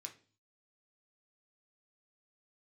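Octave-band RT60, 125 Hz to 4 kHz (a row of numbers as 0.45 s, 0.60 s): 0.70 s, 0.55 s, 0.45 s, 0.35 s, 0.40 s, 0.35 s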